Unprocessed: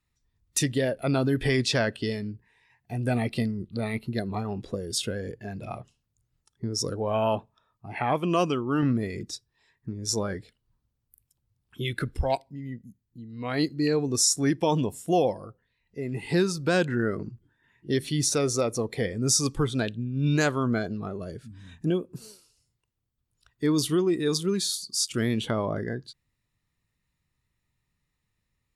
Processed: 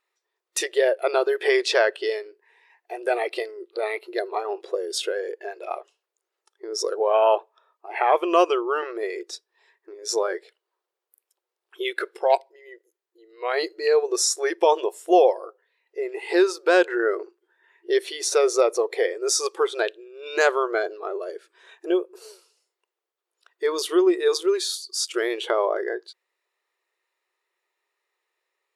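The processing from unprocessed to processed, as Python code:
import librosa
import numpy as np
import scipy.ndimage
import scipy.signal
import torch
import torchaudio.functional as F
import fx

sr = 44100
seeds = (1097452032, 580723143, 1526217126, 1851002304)

y = fx.brickwall_highpass(x, sr, low_hz=340.0)
y = fx.high_shelf(y, sr, hz=3500.0, db=-10.5)
y = y * 10.0 ** (8.0 / 20.0)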